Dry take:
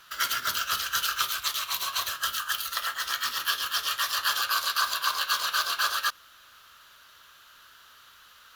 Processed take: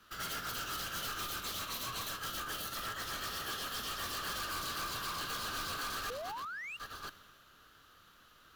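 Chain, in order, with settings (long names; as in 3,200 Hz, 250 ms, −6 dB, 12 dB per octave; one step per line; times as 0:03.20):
delay that plays each chunk backwards 645 ms, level −13 dB
parametric band 1,200 Hz +4.5 dB 0.21 octaves
in parallel at −8 dB: decimation without filtering 36×
on the sum: sound drawn into the spectrogram rise, 0:06.06–0:06.77, 420–2,900 Hz −36 dBFS
soft clipping −34 dBFS, distortion −4 dB
multiband upward and downward expander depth 40%
level −3 dB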